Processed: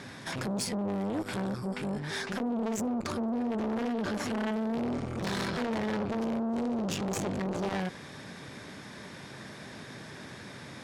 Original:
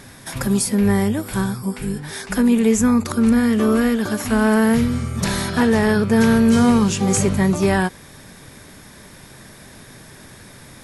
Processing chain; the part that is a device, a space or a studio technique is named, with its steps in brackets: valve radio (band-pass 120–5300 Hz; valve stage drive 25 dB, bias 0.3; transformer saturation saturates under 460 Hz)

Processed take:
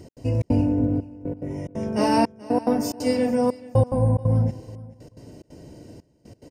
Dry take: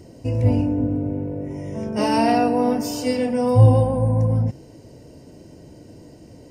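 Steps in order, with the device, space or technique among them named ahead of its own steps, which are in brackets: dynamic bell 3.1 kHz, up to -5 dB, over -45 dBFS, Q 1.7; trance gate with a delay (trance gate "x.xxx.xxxxxx..." 180 bpm -60 dB; feedback delay 432 ms, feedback 22%, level -19.5 dB)

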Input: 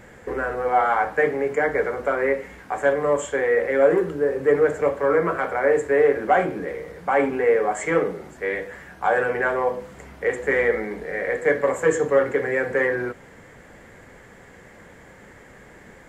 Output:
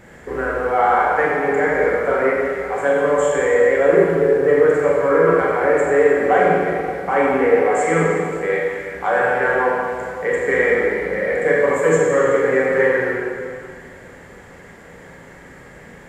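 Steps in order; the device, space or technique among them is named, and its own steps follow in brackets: tunnel (flutter echo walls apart 7.4 m, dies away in 0.28 s; reverberation RT60 2.2 s, pre-delay 22 ms, DRR -3 dB)

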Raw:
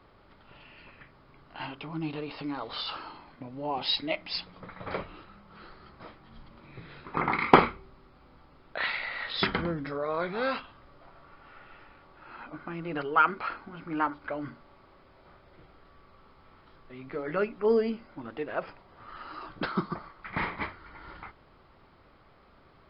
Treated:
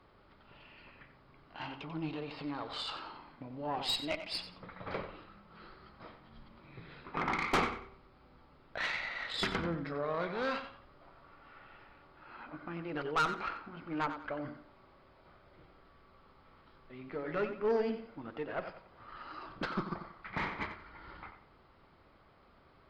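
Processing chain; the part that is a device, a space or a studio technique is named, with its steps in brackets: rockabilly slapback (valve stage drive 22 dB, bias 0.5; tape echo 91 ms, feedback 33%, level -8.5 dB, low-pass 4.2 kHz); trim -2.5 dB

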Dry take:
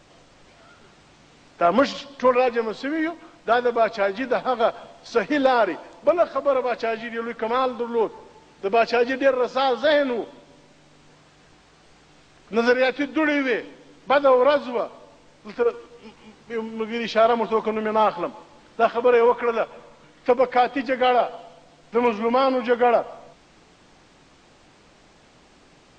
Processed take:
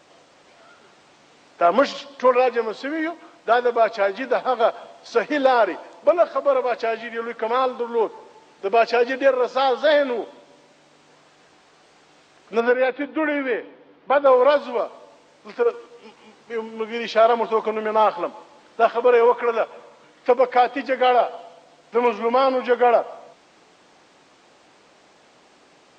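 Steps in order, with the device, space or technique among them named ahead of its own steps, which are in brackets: filter by subtraction (in parallel: low-pass 540 Hz 12 dB/octave + polarity flip); 12.60–14.26 s: on the sum: distance through air 330 m

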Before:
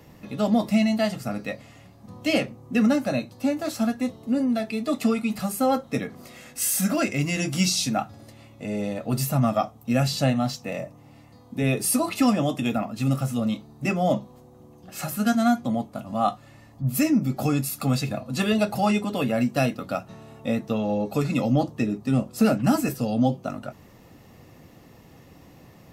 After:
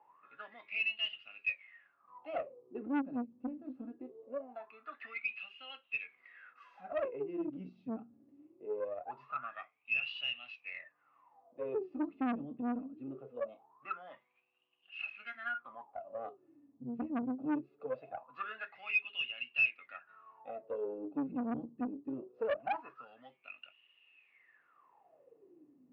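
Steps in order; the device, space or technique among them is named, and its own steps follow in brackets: wah-wah guitar rig (wah-wah 0.22 Hz 230–2900 Hz, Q 20; valve stage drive 33 dB, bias 0.35; cabinet simulation 100–3600 Hz, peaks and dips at 110 Hz -4 dB, 210 Hz -8 dB, 400 Hz +5 dB, 1.1 kHz +4 dB, 1.5 kHz +5 dB, 2.6 kHz +7 dB); trim +4 dB

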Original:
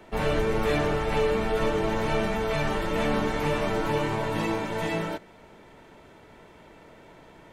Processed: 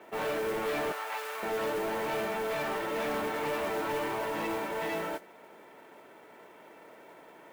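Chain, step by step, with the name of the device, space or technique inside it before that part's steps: carbon microphone (band-pass 330–2800 Hz; saturation -28 dBFS, distortion -11 dB; modulation noise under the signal 18 dB); 0.92–1.43 s: Chebyshev high-pass 940 Hz, order 2

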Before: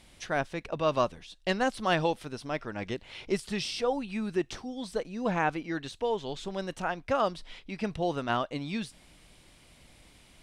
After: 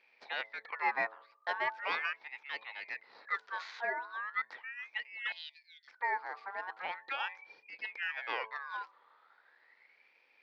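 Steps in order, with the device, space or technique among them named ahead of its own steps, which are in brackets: local Wiener filter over 9 samples; voice changer toy (ring modulator with a swept carrier 1.8 kHz, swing 35%, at 0.39 Hz; cabinet simulation 410–4300 Hz, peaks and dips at 480 Hz +7 dB, 870 Hz +8 dB, 1.9 kHz +5 dB, 2.9 kHz -5 dB); 5.32–5.88 s: inverse Chebyshev band-stop 180–950 Hz, stop band 70 dB; de-hum 110.3 Hz, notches 10; 6.96–7.92 s: peaking EQ 950 Hz -3 dB 1.8 oct; trim -6.5 dB

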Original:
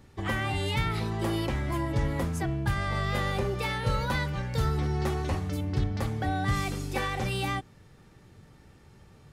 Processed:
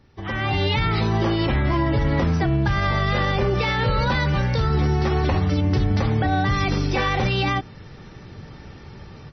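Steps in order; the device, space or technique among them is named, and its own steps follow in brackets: low-bitrate web radio (level rider gain up to 15.5 dB; peak limiter -11 dBFS, peak gain reduction 8.5 dB; trim -1 dB; MP3 24 kbps 24 kHz)

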